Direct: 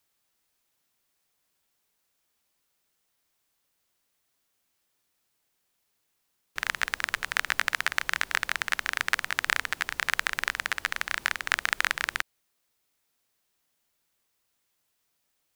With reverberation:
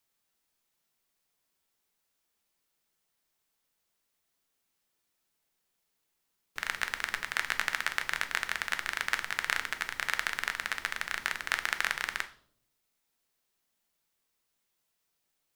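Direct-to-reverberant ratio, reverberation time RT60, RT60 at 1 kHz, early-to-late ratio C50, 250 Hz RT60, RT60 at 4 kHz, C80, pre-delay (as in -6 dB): 7.5 dB, 0.60 s, 0.50 s, 14.5 dB, 0.95 s, 0.50 s, 18.5 dB, 5 ms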